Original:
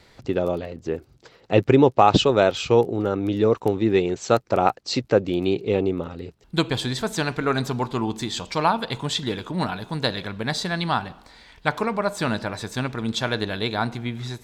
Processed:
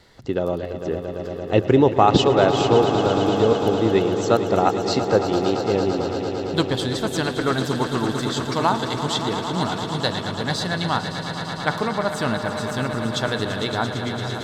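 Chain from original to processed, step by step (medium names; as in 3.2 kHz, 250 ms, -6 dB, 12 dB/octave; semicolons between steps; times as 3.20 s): band-stop 2.4 kHz, Q 7.2; echo with a slow build-up 113 ms, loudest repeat 5, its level -12 dB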